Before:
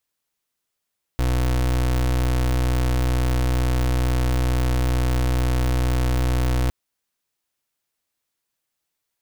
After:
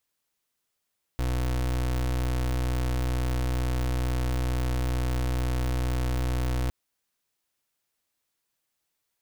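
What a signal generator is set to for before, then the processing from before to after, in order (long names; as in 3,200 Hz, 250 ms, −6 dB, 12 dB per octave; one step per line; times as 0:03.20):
pulse wave 62.2 Hz, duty 31% −20 dBFS 5.51 s
brickwall limiter −26.5 dBFS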